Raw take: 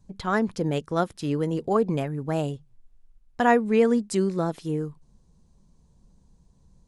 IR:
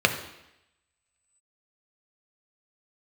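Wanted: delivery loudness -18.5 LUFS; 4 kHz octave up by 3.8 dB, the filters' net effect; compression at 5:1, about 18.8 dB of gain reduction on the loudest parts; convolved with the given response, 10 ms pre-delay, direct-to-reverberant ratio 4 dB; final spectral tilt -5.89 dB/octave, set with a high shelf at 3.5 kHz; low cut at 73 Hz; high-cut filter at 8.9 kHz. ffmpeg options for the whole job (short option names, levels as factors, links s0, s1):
-filter_complex "[0:a]highpass=73,lowpass=8900,highshelf=f=3500:g=-5,equalizer=f=4000:t=o:g=8.5,acompressor=threshold=0.0158:ratio=5,asplit=2[s0][s1];[1:a]atrim=start_sample=2205,adelay=10[s2];[s1][s2]afir=irnorm=-1:irlink=0,volume=0.0891[s3];[s0][s3]amix=inputs=2:normalize=0,volume=9.44"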